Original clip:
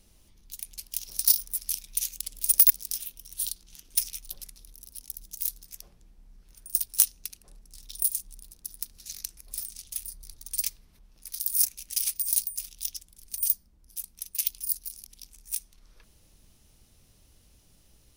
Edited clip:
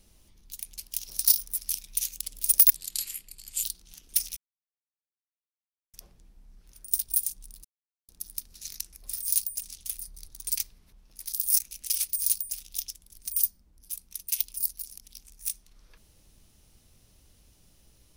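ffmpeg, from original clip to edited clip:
-filter_complex "[0:a]asplit=9[s0][s1][s2][s3][s4][s5][s6][s7][s8];[s0]atrim=end=2.754[s9];[s1]atrim=start=2.75:end=3.45,asetpts=PTS-STARTPTS,asetrate=34839,aresample=44100[s10];[s2]atrim=start=3.446:end=4.18,asetpts=PTS-STARTPTS,afade=t=out:st=0.73:d=0.004:c=hsin[s11];[s3]atrim=start=4.18:end=5.75,asetpts=PTS-STARTPTS,volume=0[s12];[s4]atrim=start=5.75:end=6.902,asetpts=PTS-STARTPTS,afade=t=in:d=0.004:c=hsin[s13];[s5]atrim=start=7.968:end=8.53,asetpts=PTS-STARTPTS,afade=t=out:st=0.558:d=0.004:c=hsin,apad=pad_dur=0.44[s14];[s6]atrim=start=8.53:end=9.672,asetpts=PTS-STARTPTS,afade=t=in:d=0.004:c=hsin[s15];[s7]atrim=start=12.228:end=12.612[s16];[s8]atrim=start=9.668[s17];[s9][s10]acrossfade=d=0.004:c1=hsin:c2=hsin[s18];[s11][s12][s13]concat=n=3:v=0:a=1[s19];[s18][s19]acrossfade=d=0.004:c1=hsin:c2=hsin[s20];[s14][s15]concat=n=2:v=0:a=1[s21];[s20][s21]acrossfade=d=0.004:c1=hsin:c2=hsin[s22];[s22][s16]acrossfade=d=0.004:c1=hsin:c2=hsin[s23];[s23][s17]acrossfade=d=0.004:c1=hsin:c2=hsin"

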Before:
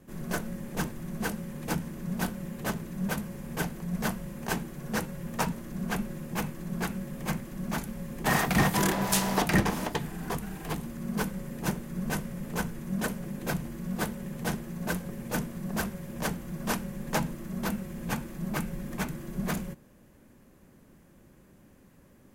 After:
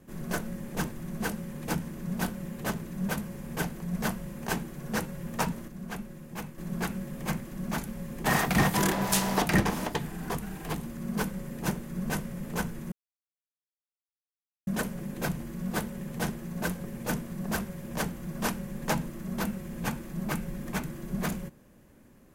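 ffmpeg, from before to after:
-filter_complex "[0:a]asplit=4[s0][s1][s2][s3];[s0]atrim=end=5.682[s4];[s1]atrim=start=5.678:end=6.582,asetpts=PTS-STARTPTS,volume=0.473[s5];[s2]atrim=start=6.578:end=12.92,asetpts=PTS-STARTPTS,afade=t=out:st=6.338:d=0.004:c=hsin,apad=pad_dur=1.75[s6];[s3]atrim=start=12.92,asetpts=PTS-STARTPTS,afade=t=in:d=0.004:c=hsin[s7];[s4][s5]acrossfade=d=0.004:c1=hsin:c2=hsin[s8];[s6][s7]concat=n=2:v=0:a=1[s9];[s8][s9]acrossfade=d=0.004:c1=hsin:c2=hsin"

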